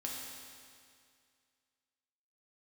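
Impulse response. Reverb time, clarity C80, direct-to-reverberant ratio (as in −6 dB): 2.2 s, 1.5 dB, −3.0 dB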